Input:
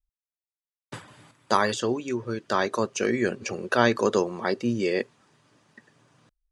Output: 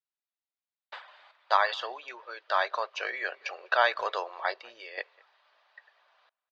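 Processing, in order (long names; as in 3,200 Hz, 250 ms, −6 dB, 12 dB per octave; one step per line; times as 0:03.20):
elliptic band-pass filter 650–4,200 Hz, stop band 50 dB
0:04.56–0:04.98: downward compressor 2.5 to 1, threshold −47 dBFS, peak gain reduction 11.5 dB
far-end echo of a speakerphone 200 ms, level −25 dB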